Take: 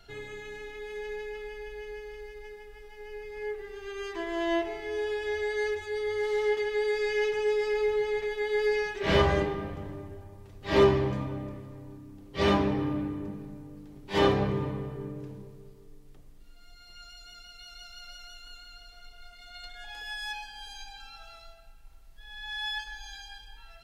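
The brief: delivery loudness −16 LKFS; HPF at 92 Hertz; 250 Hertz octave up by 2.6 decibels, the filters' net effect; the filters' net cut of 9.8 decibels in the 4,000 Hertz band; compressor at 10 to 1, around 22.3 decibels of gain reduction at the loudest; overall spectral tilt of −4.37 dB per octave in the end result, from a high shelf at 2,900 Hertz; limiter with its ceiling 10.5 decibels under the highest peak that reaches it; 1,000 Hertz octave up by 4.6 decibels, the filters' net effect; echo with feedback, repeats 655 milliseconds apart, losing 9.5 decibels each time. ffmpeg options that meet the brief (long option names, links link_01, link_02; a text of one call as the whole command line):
ffmpeg -i in.wav -af "highpass=92,equalizer=frequency=250:width_type=o:gain=3.5,equalizer=frequency=1000:width_type=o:gain=7,highshelf=frequency=2900:gain=-8.5,equalizer=frequency=4000:width_type=o:gain=-7.5,acompressor=threshold=-37dB:ratio=10,alimiter=level_in=13.5dB:limit=-24dB:level=0:latency=1,volume=-13.5dB,aecho=1:1:655|1310|1965|2620:0.335|0.111|0.0365|0.012,volume=28.5dB" out.wav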